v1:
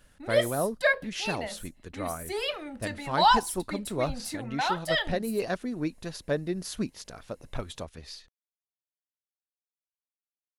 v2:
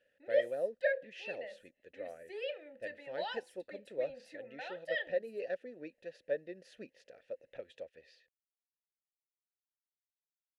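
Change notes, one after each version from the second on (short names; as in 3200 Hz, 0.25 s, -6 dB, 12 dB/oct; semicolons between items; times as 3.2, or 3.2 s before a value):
master: add vowel filter e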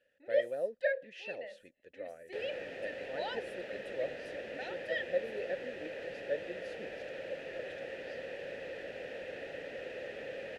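second sound: unmuted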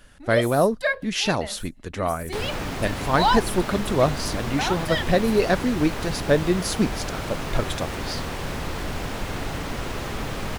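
speech +9.5 dB; master: remove vowel filter e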